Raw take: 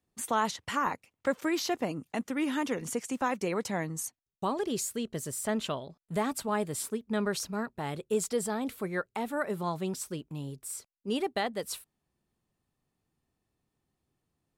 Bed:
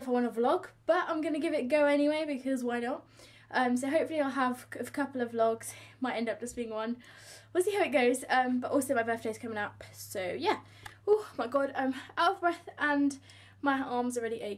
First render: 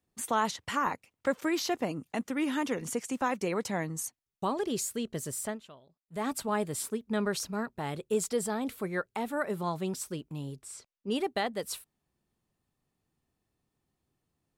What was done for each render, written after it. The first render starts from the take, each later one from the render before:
0:05.42–0:06.28: duck −18 dB, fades 0.17 s
0:10.60–0:11.10: low-pass filter 7,600 Hz → 4,500 Hz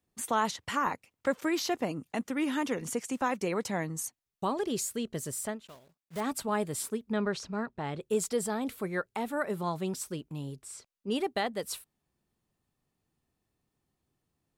0:05.67–0:06.22: one scale factor per block 3 bits
0:07.12–0:08.01: high-frequency loss of the air 100 metres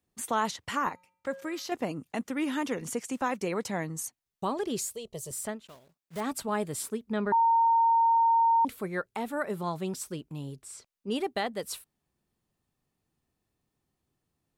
0:00.89–0:01.72: tuned comb filter 180 Hz, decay 0.65 s, harmonics odd, mix 50%
0:04.90–0:05.31: phaser with its sweep stopped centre 640 Hz, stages 4
0:07.32–0:08.65: beep over 918 Hz −19.5 dBFS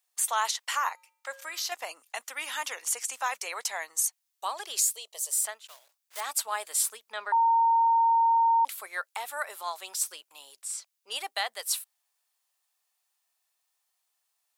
high-pass filter 710 Hz 24 dB per octave
high-shelf EQ 2,900 Hz +11 dB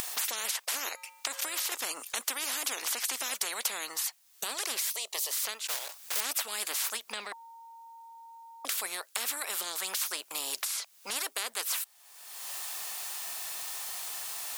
upward compression, threshold −32 dBFS
every bin compressed towards the loudest bin 10 to 1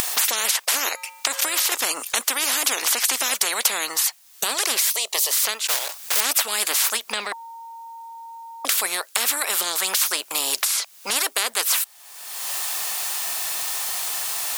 level +11.5 dB
brickwall limiter −3 dBFS, peak gain reduction 2 dB

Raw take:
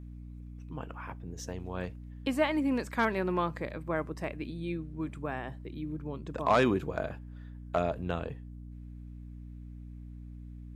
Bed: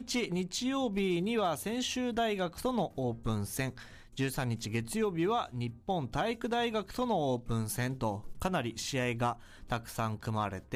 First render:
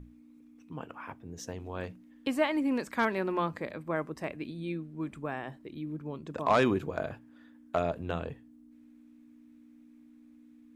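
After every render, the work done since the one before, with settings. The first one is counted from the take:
mains-hum notches 60/120/180 Hz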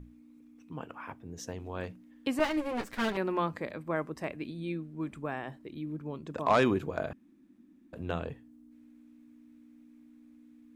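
0:02.39–0:03.17: lower of the sound and its delayed copy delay 9.4 ms
0:07.13–0:07.93: fill with room tone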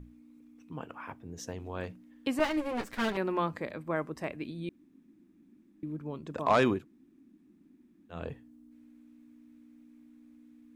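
0:04.69–0:05.83: fill with room tone
0:06.78–0:08.17: fill with room tone, crossfade 0.16 s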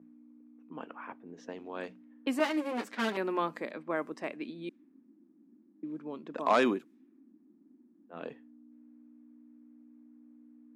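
low-pass that shuts in the quiet parts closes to 850 Hz, open at −31 dBFS
Chebyshev high-pass filter 230 Hz, order 3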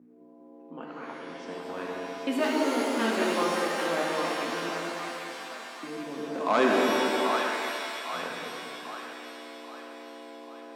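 on a send: echo with a time of its own for lows and highs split 700 Hz, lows 200 ms, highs 794 ms, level −4 dB
on the sum: reverb with rising layers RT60 2 s, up +7 semitones, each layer −2 dB, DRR 0.5 dB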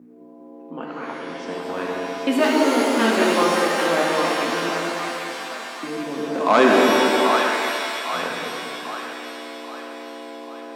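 level +8.5 dB
brickwall limiter −3 dBFS, peak gain reduction 1 dB

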